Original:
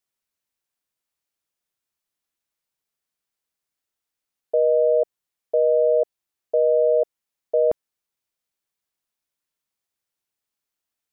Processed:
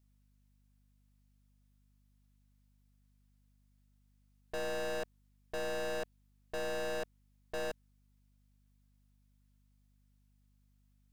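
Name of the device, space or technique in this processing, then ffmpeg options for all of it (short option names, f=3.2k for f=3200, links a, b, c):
valve amplifier with mains hum: -af "aeval=exprs='(tanh(89.1*val(0)+0.65)-tanh(0.65))/89.1':c=same,aeval=exprs='val(0)+0.000282*(sin(2*PI*50*n/s)+sin(2*PI*2*50*n/s)/2+sin(2*PI*3*50*n/s)/3+sin(2*PI*4*50*n/s)/4+sin(2*PI*5*50*n/s)/5)':c=same,volume=2.5dB"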